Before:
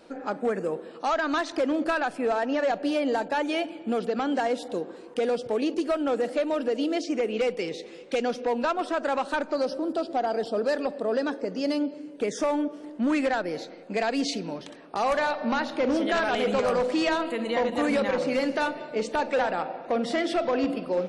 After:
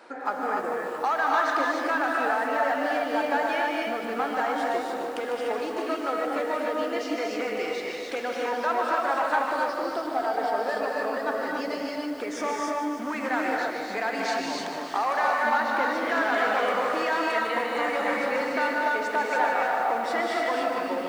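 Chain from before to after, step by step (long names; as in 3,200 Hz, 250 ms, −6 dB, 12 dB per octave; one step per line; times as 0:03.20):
downward compressor 4 to 1, threshold −31 dBFS, peak gain reduction 8.5 dB
high-pass filter 310 Hz 12 dB per octave
flat-topped bell 1,300 Hz +8.5 dB
reverb whose tail is shaped and stops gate 320 ms rising, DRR −1.5 dB
feedback echo at a low word length 150 ms, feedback 80%, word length 8 bits, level −10 dB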